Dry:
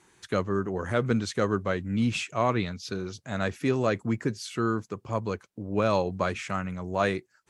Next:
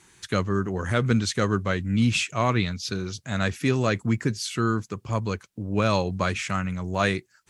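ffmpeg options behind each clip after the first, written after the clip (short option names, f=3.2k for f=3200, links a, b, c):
-af "equalizer=f=560:w=0.44:g=-8.5,volume=8dB"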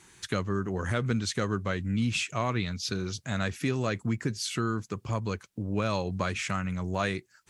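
-af "acompressor=threshold=-29dB:ratio=2"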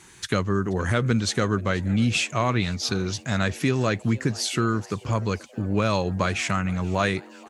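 -filter_complex "[0:a]asplit=6[a][b][c][d][e][f];[b]adelay=479,afreqshift=130,volume=-22.5dB[g];[c]adelay=958,afreqshift=260,volume=-26.5dB[h];[d]adelay=1437,afreqshift=390,volume=-30.5dB[i];[e]adelay=1916,afreqshift=520,volume=-34.5dB[j];[f]adelay=2395,afreqshift=650,volume=-38.6dB[k];[a][g][h][i][j][k]amix=inputs=6:normalize=0,volume=6dB"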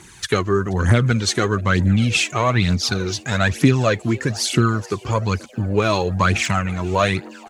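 -af "aphaser=in_gain=1:out_gain=1:delay=3.1:decay=0.54:speed=1.1:type=triangular,volume=4dB"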